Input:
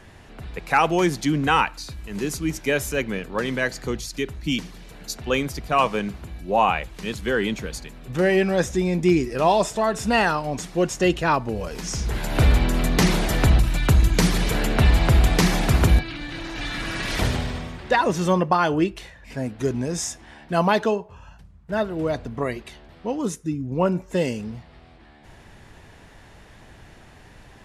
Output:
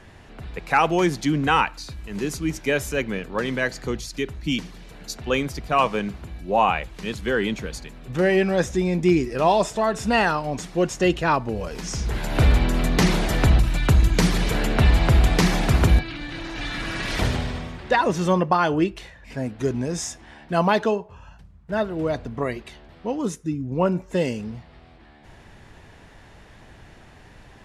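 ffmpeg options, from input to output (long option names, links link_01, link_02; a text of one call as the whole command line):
ffmpeg -i in.wav -af "highshelf=frequency=9000:gain=-6.5" out.wav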